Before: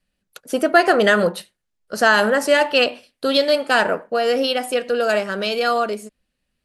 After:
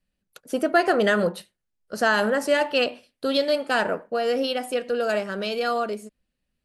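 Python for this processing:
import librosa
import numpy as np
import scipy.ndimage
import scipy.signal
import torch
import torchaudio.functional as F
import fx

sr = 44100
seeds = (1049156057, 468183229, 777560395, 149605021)

y = fx.low_shelf(x, sr, hz=500.0, db=4.5)
y = F.gain(torch.from_numpy(y), -7.0).numpy()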